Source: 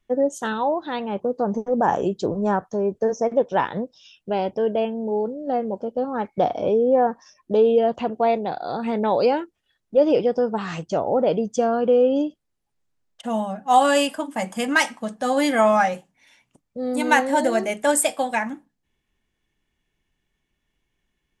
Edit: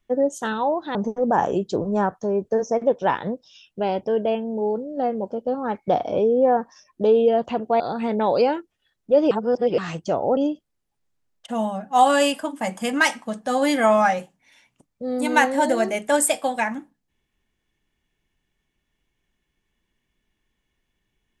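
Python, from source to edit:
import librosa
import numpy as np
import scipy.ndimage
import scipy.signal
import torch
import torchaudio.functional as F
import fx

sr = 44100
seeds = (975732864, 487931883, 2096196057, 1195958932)

y = fx.edit(x, sr, fx.cut(start_s=0.95, length_s=0.5),
    fx.cut(start_s=8.3, length_s=0.34),
    fx.reverse_span(start_s=10.15, length_s=0.47),
    fx.cut(start_s=11.21, length_s=0.91), tone=tone)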